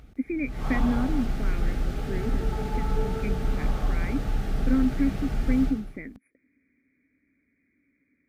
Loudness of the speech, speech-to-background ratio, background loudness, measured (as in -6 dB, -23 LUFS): -30.5 LUFS, 0.5 dB, -31.0 LUFS